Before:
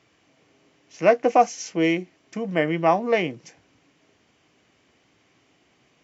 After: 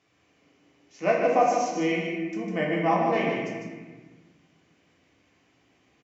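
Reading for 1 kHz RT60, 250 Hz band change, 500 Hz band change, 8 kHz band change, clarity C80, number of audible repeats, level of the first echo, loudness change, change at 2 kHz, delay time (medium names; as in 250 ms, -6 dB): 1.3 s, -2.5 dB, -3.5 dB, no reading, 1.0 dB, 1, -5.0 dB, -3.5 dB, -2.0 dB, 151 ms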